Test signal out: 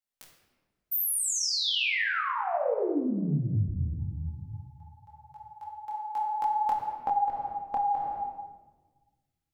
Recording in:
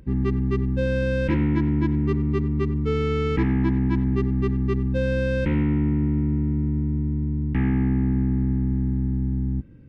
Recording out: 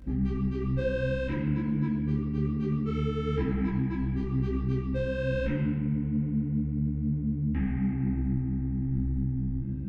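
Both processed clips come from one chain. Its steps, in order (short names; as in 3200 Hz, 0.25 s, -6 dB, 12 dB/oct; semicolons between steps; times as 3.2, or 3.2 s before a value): shoebox room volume 980 m³, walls mixed, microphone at 2.1 m; compressor 5:1, threshold -22 dBFS; detuned doubles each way 38 cents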